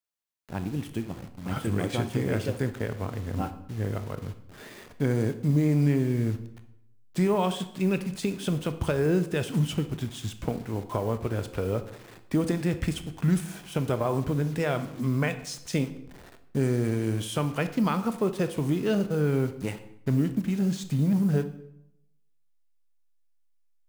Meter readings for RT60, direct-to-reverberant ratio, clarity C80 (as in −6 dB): 0.80 s, 9.5 dB, 15.5 dB